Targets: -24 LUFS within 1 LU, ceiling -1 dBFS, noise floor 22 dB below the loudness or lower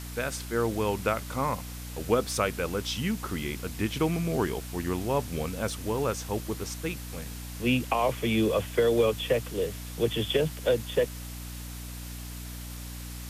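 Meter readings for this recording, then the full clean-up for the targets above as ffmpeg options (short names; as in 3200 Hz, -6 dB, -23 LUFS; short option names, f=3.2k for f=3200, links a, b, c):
hum 60 Hz; harmonics up to 300 Hz; hum level -37 dBFS; noise floor -39 dBFS; noise floor target -51 dBFS; loudness -29.0 LUFS; peak -12.0 dBFS; loudness target -24.0 LUFS
-> -af "bandreject=f=60:t=h:w=4,bandreject=f=120:t=h:w=4,bandreject=f=180:t=h:w=4,bandreject=f=240:t=h:w=4,bandreject=f=300:t=h:w=4"
-af "afftdn=nr=12:nf=-39"
-af "volume=5dB"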